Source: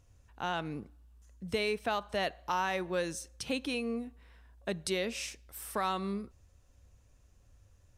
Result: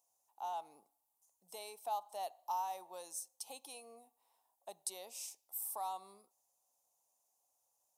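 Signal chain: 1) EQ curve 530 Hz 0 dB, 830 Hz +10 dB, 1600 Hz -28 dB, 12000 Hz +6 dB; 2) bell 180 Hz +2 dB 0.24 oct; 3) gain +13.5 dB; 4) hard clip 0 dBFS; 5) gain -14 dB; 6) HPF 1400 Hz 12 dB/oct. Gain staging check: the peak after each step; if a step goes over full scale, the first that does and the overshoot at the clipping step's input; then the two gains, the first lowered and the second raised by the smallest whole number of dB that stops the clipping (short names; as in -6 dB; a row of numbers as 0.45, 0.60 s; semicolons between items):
-18.5, -18.5, -5.0, -5.0, -19.0, -25.0 dBFS; no overload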